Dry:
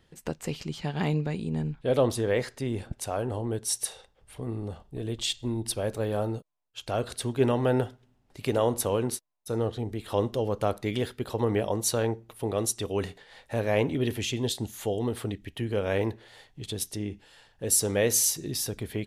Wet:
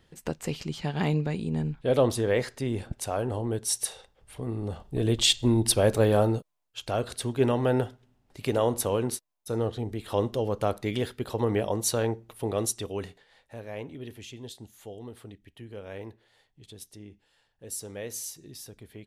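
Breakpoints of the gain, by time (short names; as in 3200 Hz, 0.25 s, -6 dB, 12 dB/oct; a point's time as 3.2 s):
4.56 s +1 dB
5.03 s +8 dB
6.02 s +8 dB
7.04 s 0 dB
12.64 s 0 dB
13.61 s -13 dB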